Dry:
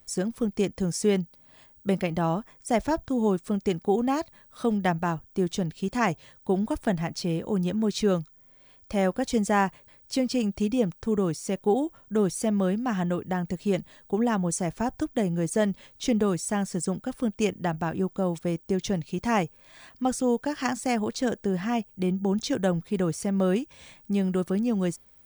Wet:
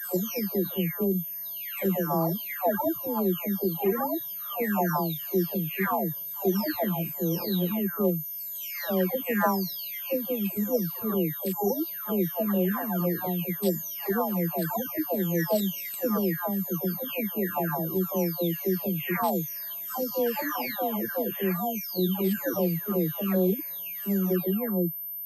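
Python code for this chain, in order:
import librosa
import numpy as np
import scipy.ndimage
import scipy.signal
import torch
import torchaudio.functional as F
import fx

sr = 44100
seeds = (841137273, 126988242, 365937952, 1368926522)

y = fx.spec_delay(x, sr, highs='early', ms=892)
y = scipy.signal.sosfilt(scipy.signal.butter(2, 170.0, 'highpass', fs=sr, output='sos'), y)
y = fx.pwm(y, sr, carrier_hz=13000.0)
y = y * 10.0 ** (2.0 / 20.0)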